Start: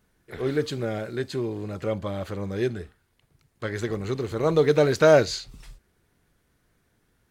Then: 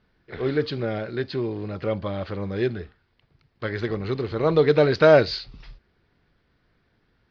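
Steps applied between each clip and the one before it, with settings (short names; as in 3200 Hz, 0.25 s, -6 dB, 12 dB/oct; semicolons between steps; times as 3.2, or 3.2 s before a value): elliptic low-pass 4900 Hz, stop band 50 dB; gain +2.5 dB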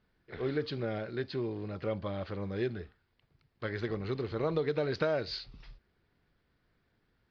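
compressor 12:1, threshold -19 dBFS, peak gain reduction 10 dB; gain -7.5 dB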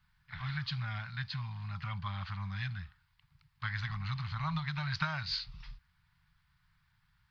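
elliptic band-stop 160–940 Hz, stop band 60 dB; gain +4 dB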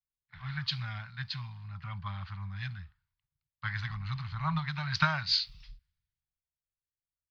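three-band expander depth 100%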